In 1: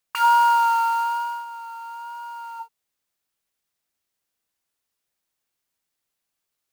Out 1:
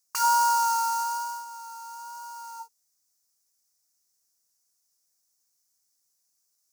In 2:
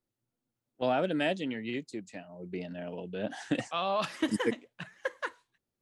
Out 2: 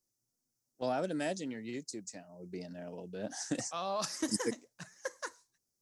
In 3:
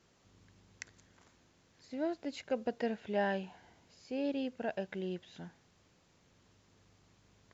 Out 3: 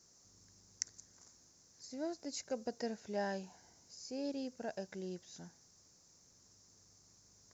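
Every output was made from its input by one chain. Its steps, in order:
resonant high shelf 4200 Hz +11 dB, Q 3; gain -5 dB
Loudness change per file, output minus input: -5.0, -4.5, -5.5 LU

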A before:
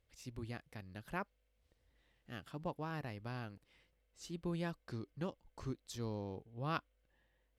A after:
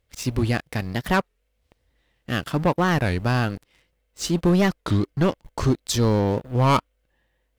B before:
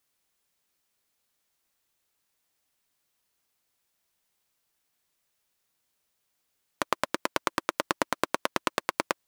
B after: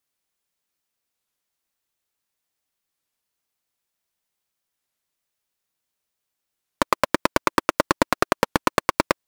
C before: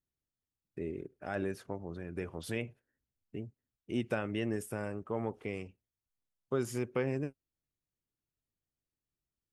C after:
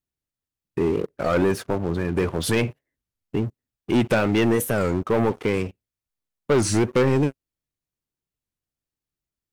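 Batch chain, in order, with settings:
sample leveller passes 3; record warp 33 1/3 rpm, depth 250 cents; match loudness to -23 LUFS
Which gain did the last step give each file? +12.5, +1.5, +7.5 dB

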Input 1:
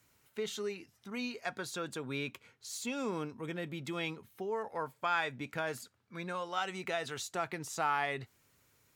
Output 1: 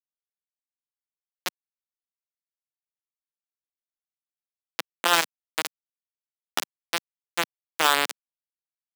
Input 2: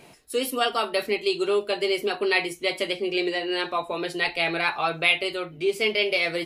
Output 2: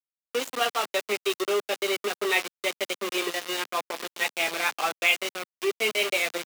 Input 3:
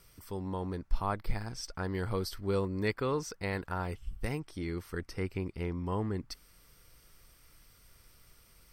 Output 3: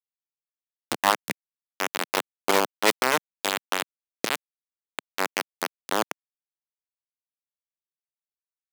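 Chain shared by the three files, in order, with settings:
nonlinear frequency compression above 2900 Hz 1.5:1; sample gate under -24.5 dBFS; Bessel high-pass 310 Hz, order 4; match loudness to -27 LUFS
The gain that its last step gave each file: +15.0, -1.0, +15.0 dB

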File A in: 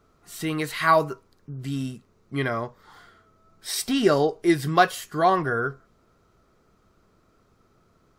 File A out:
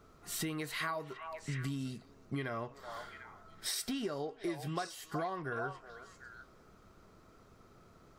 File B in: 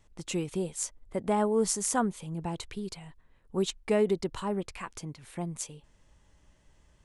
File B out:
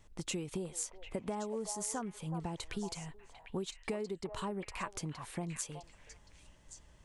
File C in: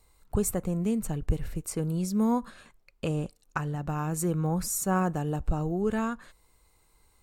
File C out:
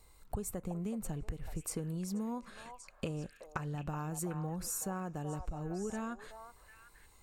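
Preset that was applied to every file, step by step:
compressor 16:1, threshold -36 dBFS; delay with a stepping band-pass 0.374 s, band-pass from 800 Hz, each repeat 1.4 oct, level -4.5 dB; gain +1.5 dB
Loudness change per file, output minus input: -15.5, -8.5, -10.0 LU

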